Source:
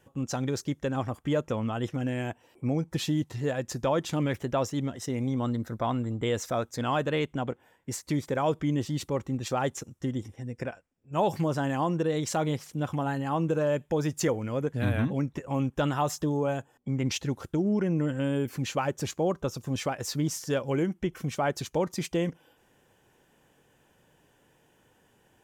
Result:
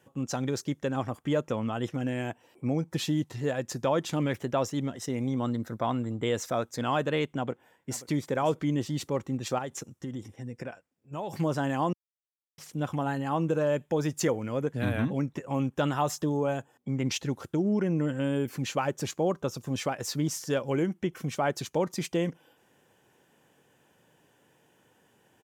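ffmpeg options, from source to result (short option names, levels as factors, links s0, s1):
-filter_complex "[0:a]asplit=2[s0][s1];[s1]afade=t=in:st=7.35:d=0.01,afade=t=out:st=8.11:d=0.01,aecho=0:1:530|1060|1590:0.133352|0.0400056|0.0120017[s2];[s0][s2]amix=inputs=2:normalize=0,asettb=1/sr,asplit=3[s3][s4][s5];[s3]atrim=end=9.584[s6];[s4]atrim=start=9.58:end=11.33,asetpts=PTS-STARTPTS,afade=t=in:d=0.004:c=qsin,afade=t=out:st=1.746:d=0.004:c=qsin,acompressor=threshold=0.0282:ratio=6:attack=3.2:release=140:knee=1:detection=peak[s7];[s5]atrim=start=11.326[s8];[s6][s7]acrossfade=d=0.004:c1=hsin:c2=qsin[s9];[s9][s8]acrossfade=d=0.004:c1=qsin:c2=hsin,asplit=3[s10][s11][s12];[s10]atrim=end=11.93,asetpts=PTS-STARTPTS,afade=t=out:st=11.926:d=0.004:c=hsin[s13];[s11]atrim=start=11.93:end=12.58,asetpts=PTS-STARTPTS,volume=0[s14];[s12]atrim=start=12.58,asetpts=PTS-STARTPTS,afade=t=in:d=0.004:c=hsin[s15];[s13][s14][s15]concat=n=3:v=0:a=1,highpass=110"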